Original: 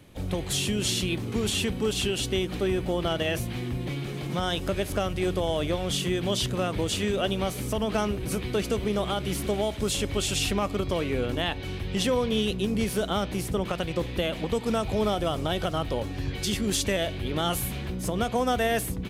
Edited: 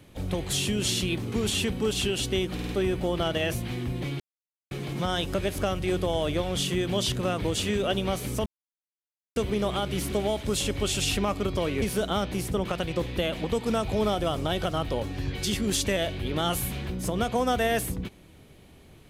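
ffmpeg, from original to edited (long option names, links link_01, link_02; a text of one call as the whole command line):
ffmpeg -i in.wav -filter_complex "[0:a]asplit=8[link_01][link_02][link_03][link_04][link_05][link_06][link_07][link_08];[link_01]atrim=end=2.592[link_09];[link_02]atrim=start=2.538:end=2.592[link_10];[link_03]atrim=start=2.538:end=2.592[link_11];[link_04]atrim=start=2.538:end=4.05,asetpts=PTS-STARTPTS,afade=type=out:start_time=1.508:duration=0.004:curve=hsin,apad=pad_dur=0.51[link_12];[link_05]atrim=start=4.05:end=7.8,asetpts=PTS-STARTPTS,afade=type=in:duration=0.004:curve=hsin,afade=type=out:start_time=3.746:duration=0.004:curve=hsin[link_13];[link_06]atrim=start=7.8:end=8.7,asetpts=PTS-STARTPTS,volume=0[link_14];[link_07]atrim=start=8.7:end=11.162,asetpts=PTS-STARTPTS,afade=type=in:duration=0.004:curve=hsin[link_15];[link_08]atrim=start=12.818[link_16];[link_09][link_10]acrossfade=duration=0.004:curve1=hsin:curve2=hsin[link_17];[link_17][link_11]acrossfade=duration=0.004:curve1=hsin:curve2=hsin[link_18];[link_12][link_13][link_14][link_15]concat=n=4:v=0:a=1[link_19];[link_18][link_19]acrossfade=duration=0.004:curve1=hsin:curve2=hsin[link_20];[link_20][link_16]acrossfade=duration=0.004:curve1=hsin:curve2=hsin" out.wav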